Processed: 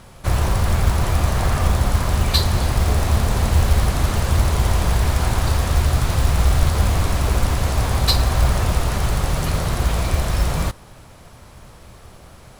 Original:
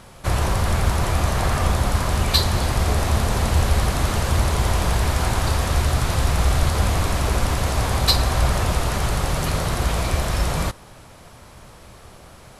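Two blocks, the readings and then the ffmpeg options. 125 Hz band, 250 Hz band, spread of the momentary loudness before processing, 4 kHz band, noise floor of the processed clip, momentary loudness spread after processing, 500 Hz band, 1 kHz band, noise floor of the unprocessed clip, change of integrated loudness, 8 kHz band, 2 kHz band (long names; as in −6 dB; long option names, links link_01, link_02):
+2.5 dB, +1.0 dB, 4 LU, −1.0 dB, −44 dBFS, 4 LU, −0.5 dB, −1.0 dB, −45 dBFS, +1.5 dB, −0.5 dB, −1.0 dB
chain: -af "lowshelf=frequency=170:gain=4.5,acrusher=bits=6:mode=log:mix=0:aa=0.000001,volume=-1dB"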